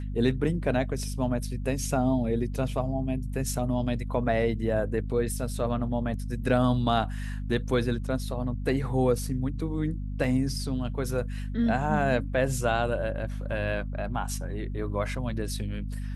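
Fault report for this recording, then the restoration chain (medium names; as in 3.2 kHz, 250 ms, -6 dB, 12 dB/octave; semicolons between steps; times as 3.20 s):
hum 50 Hz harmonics 5 -33 dBFS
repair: de-hum 50 Hz, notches 5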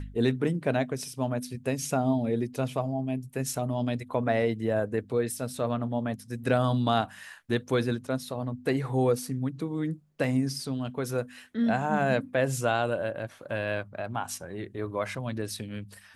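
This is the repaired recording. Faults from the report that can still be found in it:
nothing left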